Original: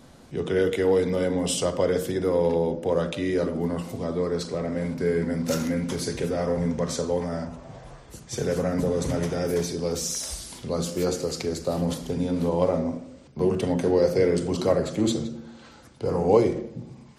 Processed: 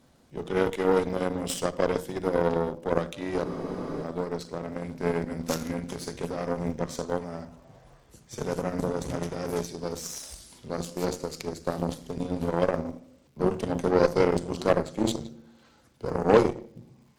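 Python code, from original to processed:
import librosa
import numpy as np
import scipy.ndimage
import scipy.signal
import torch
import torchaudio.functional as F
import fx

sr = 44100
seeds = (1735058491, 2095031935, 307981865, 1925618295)

y = fx.dmg_crackle(x, sr, seeds[0], per_s=330.0, level_db=-48.0)
y = fx.cheby_harmonics(y, sr, harmonics=(4, 7), levels_db=(-17, -20), full_scale_db=-6.5)
y = fx.spec_freeze(y, sr, seeds[1], at_s=3.47, hold_s=0.56)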